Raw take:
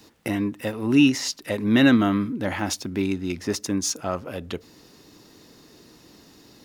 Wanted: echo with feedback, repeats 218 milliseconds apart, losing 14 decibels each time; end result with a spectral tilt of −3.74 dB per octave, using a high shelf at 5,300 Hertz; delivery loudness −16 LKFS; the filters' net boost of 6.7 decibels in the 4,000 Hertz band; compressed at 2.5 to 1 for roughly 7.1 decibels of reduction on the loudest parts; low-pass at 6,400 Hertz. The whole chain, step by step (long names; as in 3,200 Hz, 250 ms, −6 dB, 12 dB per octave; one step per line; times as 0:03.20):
low-pass filter 6,400 Hz
parametric band 4,000 Hz +7.5 dB
high-shelf EQ 5,300 Hz +5 dB
downward compressor 2.5 to 1, threshold −22 dBFS
repeating echo 218 ms, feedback 20%, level −14 dB
level +10 dB